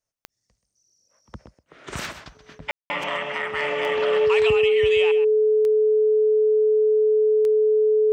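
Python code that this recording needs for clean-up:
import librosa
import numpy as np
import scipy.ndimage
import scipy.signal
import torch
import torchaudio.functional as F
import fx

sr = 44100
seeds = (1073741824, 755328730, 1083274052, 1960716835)

y = fx.fix_declick_ar(x, sr, threshold=10.0)
y = fx.notch(y, sr, hz=430.0, q=30.0)
y = fx.fix_ambience(y, sr, seeds[0], print_start_s=0.28, print_end_s=0.78, start_s=2.71, end_s=2.9)
y = fx.fix_echo_inverse(y, sr, delay_ms=130, level_db=-12.0)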